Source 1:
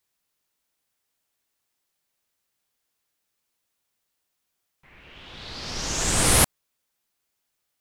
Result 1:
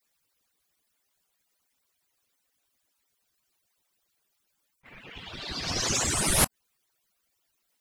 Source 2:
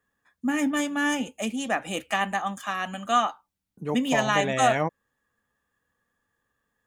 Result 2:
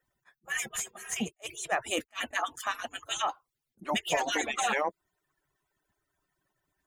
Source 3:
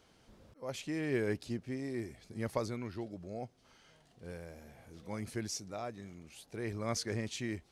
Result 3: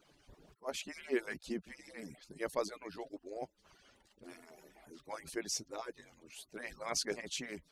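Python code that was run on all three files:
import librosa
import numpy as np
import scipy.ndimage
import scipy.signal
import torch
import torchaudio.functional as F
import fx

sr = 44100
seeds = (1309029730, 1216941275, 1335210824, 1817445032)

p1 = fx.hpss_only(x, sr, part='percussive')
p2 = fx.over_compress(p1, sr, threshold_db=-32.0, ratio=-0.5)
p3 = p1 + (p2 * librosa.db_to_amplitude(-0.5))
p4 = fx.attack_slew(p3, sr, db_per_s=490.0)
y = p4 * librosa.db_to_amplitude(-3.0)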